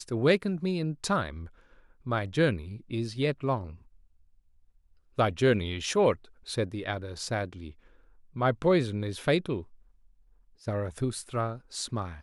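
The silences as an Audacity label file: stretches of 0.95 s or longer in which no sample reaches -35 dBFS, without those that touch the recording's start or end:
3.700000	5.190000	silence
9.610000	10.670000	silence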